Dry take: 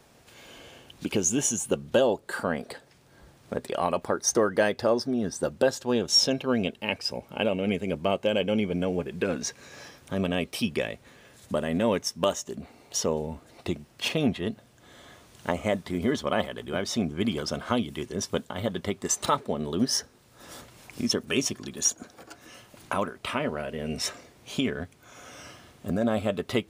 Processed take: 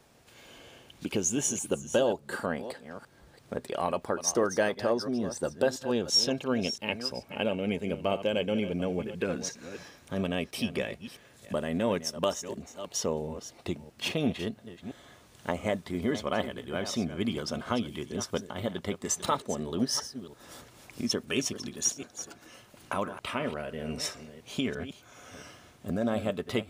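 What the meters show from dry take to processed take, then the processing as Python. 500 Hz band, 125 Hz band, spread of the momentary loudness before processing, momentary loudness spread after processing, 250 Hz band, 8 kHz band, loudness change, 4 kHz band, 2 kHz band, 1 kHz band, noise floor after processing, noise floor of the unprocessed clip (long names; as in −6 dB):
−3.5 dB, −3.0 dB, 19 LU, 16 LU, −3.5 dB, −3.0 dB, −3.5 dB, −3.0 dB, −3.0 dB, −3.5 dB, −58 dBFS, −58 dBFS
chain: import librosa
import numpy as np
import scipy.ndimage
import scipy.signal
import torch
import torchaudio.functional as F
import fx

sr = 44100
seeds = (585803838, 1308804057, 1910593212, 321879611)

y = fx.reverse_delay(x, sr, ms=339, wet_db=-12.0)
y = y * 10.0 ** (-3.5 / 20.0)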